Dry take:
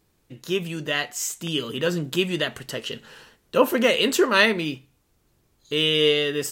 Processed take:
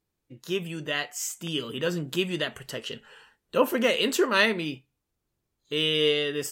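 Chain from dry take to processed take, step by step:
noise reduction from a noise print of the clip's start 11 dB
level −4 dB

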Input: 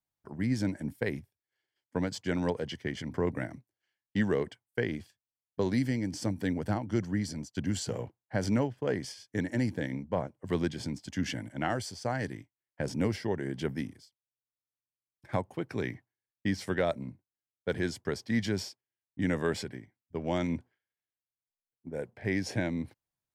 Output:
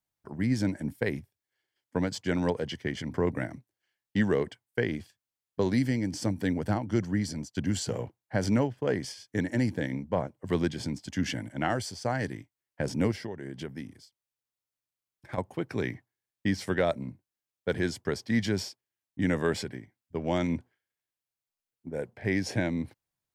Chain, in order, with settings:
0:13.11–0:15.38: downward compressor 6 to 1, threshold −37 dBFS, peak gain reduction 12 dB
level +2.5 dB

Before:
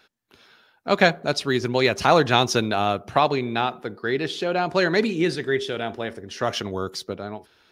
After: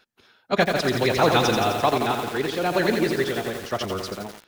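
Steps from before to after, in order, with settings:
amplitude modulation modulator 150 Hz, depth 10%
phase-vocoder stretch with locked phases 0.58×
feedback echo at a low word length 86 ms, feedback 80%, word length 6 bits, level −5 dB

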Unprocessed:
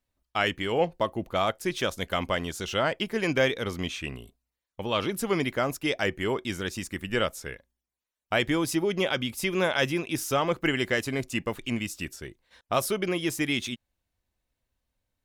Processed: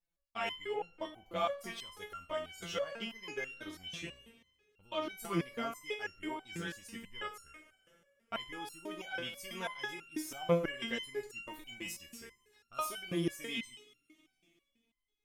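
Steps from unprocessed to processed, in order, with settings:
0:11.16–0:12.83: high-shelf EQ 11,000 Hz +7 dB
convolution reverb, pre-delay 3 ms, DRR 9 dB
step-sequenced resonator 6.1 Hz 170–1,400 Hz
level +3.5 dB

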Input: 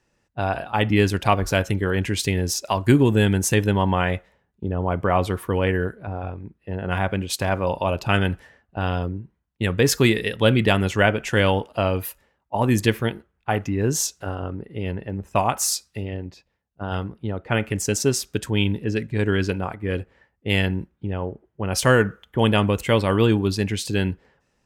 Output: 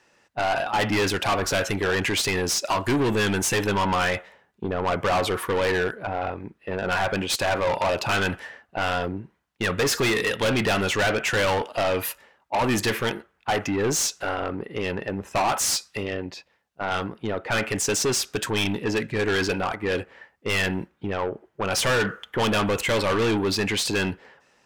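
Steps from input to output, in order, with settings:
mid-hump overdrive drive 25 dB, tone 4,800 Hz, clips at −2 dBFS
soft clipping −11.5 dBFS, distortion −14 dB
level −7 dB

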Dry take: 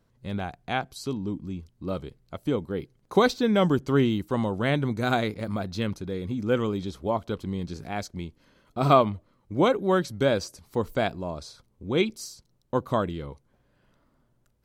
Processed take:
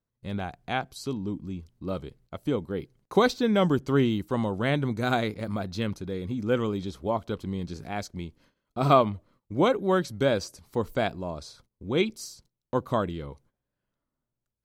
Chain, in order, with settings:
noise gate −57 dBFS, range −18 dB
level −1 dB

